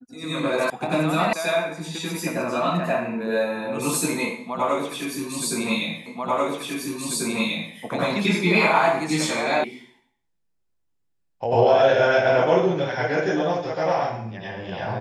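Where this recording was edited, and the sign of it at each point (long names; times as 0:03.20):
0:00.70: cut off before it has died away
0:01.33: cut off before it has died away
0:06.06: the same again, the last 1.69 s
0:09.64: cut off before it has died away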